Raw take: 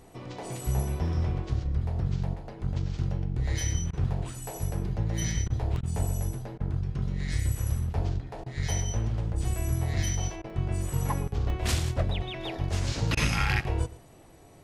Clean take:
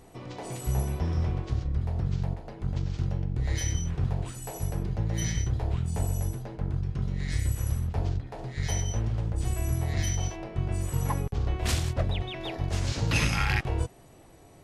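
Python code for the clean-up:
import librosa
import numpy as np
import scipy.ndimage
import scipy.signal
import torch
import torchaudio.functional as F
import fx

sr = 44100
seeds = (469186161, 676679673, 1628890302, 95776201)

y = fx.fix_interpolate(x, sr, at_s=(5.76, 9.56, 10.5, 11.5), length_ms=1.3)
y = fx.fix_interpolate(y, sr, at_s=(3.91, 5.48, 5.81, 6.58, 8.44, 10.42, 13.15), length_ms=20.0)
y = fx.fix_echo_inverse(y, sr, delay_ms=113, level_db=-18.0)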